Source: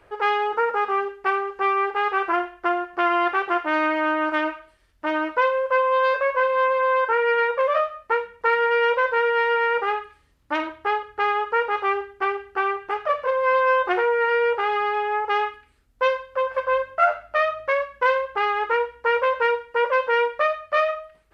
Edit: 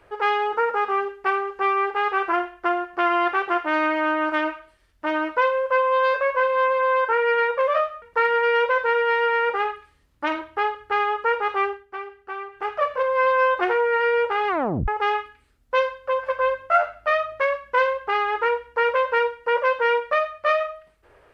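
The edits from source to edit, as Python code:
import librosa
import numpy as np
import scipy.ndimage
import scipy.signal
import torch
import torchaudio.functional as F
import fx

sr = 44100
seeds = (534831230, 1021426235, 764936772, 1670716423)

y = fx.edit(x, sr, fx.cut(start_s=8.02, length_s=0.28),
    fx.fade_down_up(start_s=11.93, length_s=1.05, db=-9.5, fade_s=0.2),
    fx.tape_stop(start_s=14.76, length_s=0.4), tone=tone)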